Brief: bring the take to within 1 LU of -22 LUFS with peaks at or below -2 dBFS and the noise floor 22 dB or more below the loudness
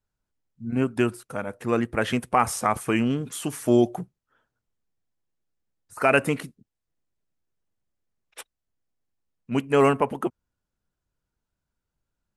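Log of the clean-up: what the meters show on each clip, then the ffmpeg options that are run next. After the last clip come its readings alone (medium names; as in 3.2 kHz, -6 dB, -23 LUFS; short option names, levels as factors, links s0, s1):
loudness -24.5 LUFS; peak level -6.0 dBFS; loudness target -22.0 LUFS
-> -af "volume=1.33"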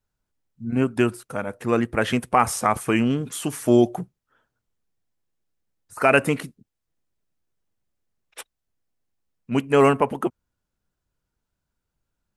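loudness -22.0 LUFS; peak level -3.5 dBFS; noise floor -82 dBFS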